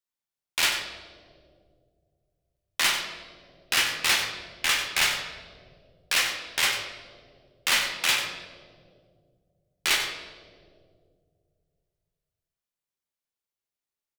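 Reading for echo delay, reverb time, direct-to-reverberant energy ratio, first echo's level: 94 ms, 2.3 s, 2.0 dB, -10.0 dB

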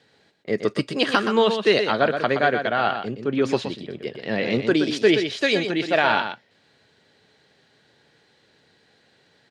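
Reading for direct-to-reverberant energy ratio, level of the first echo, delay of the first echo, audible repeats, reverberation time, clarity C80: no reverb, -7.5 dB, 122 ms, 1, no reverb, no reverb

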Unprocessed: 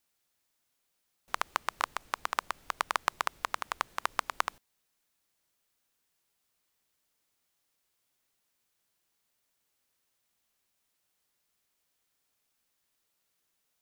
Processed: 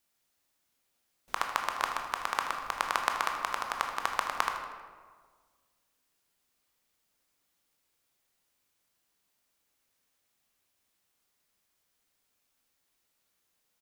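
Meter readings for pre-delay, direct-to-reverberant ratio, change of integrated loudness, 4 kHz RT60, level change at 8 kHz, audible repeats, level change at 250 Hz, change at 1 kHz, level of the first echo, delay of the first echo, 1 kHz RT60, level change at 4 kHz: 17 ms, 2.5 dB, +2.0 dB, 0.90 s, +1.0 dB, 1, +3.0 dB, +2.5 dB, -12.0 dB, 79 ms, 1.5 s, +1.5 dB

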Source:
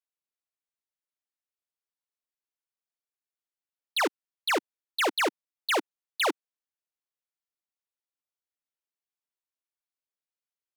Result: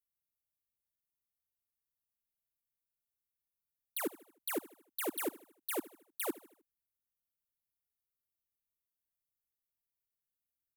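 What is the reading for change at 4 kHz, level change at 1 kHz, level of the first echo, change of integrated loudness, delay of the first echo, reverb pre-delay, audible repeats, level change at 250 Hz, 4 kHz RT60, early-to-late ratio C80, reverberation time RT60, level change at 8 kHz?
-18.0 dB, -16.0 dB, -19.0 dB, -11.0 dB, 77 ms, no reverb, 3, -5.5 dB, no reverb, no reverb, no reverb, -4.5 dB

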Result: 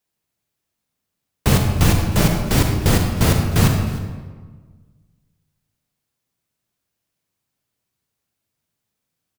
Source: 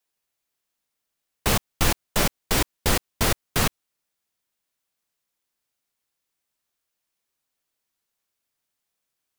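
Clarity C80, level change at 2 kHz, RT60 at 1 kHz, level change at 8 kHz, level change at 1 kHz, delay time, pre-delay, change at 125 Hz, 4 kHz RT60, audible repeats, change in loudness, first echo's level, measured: 5.5 dB, +2.0 dB, 1.4 s, +1.0 dB, +3.0 dB, 308 ms, 35 ms, +14.0 dB, 1.0 s, 1, +6.0 dB, -19.5 dB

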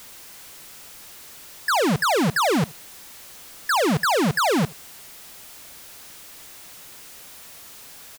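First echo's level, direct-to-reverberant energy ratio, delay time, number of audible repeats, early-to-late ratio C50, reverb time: -23.5 dB, no reverb, 75 ms, 1, no reverb, no reverb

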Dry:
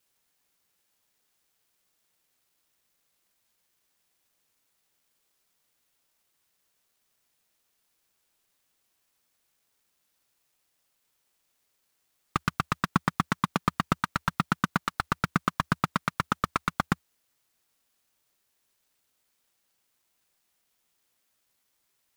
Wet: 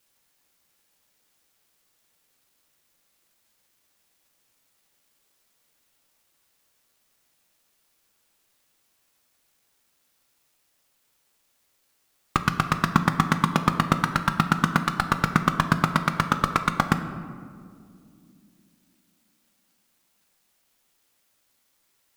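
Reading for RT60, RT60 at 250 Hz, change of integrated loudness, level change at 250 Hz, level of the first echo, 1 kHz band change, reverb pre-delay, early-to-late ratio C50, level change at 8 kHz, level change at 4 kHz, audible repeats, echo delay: 2.3 s, 3.7 s, +6.0 dB, +6.5 dB, no echo, +5.5 dB, 4 ms, 10.0 dB, +5.5 dB, +5.5 dB, no echo, no echo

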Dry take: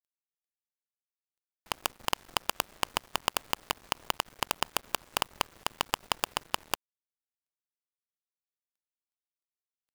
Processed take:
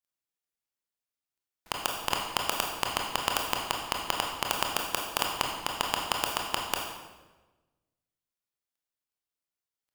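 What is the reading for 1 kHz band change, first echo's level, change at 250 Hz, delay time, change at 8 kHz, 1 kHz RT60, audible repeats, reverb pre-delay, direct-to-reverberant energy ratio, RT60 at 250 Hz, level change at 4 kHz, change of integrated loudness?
+3.0 dB, no echo, +3.5 dB, no echo, +2.5 dB, 1.1 s, no echo, 22 ms, 0.0 dB, 1.4 s, +3.0 dB, +3.0 dB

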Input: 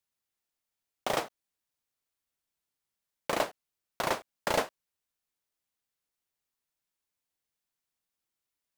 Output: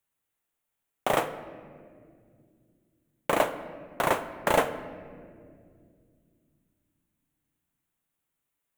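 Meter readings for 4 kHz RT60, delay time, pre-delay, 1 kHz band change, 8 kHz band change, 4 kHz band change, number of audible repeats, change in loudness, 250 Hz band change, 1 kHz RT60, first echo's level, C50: 1.1 s, no echo, 6 ms, +6.0 dB, +1.5 dB, 0.0 dB, no echo, +4.5 dB, +6.5 dB, 1.7 s, no echo, 12.0 dB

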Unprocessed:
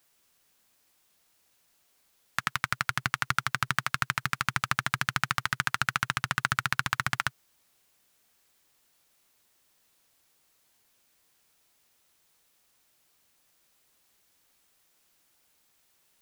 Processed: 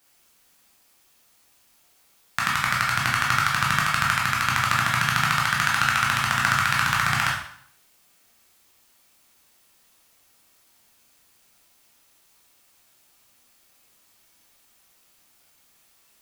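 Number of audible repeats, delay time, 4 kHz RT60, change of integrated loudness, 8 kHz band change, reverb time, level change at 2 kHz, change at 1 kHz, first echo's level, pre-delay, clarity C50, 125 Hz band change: no echo, no echo, 0.60 s, +8.0 dB, +8.0 dB, 0.60 s, +7.5 dB, +8.5 dB, no echo, 6 ms, 3.5 dB, +7.5 dB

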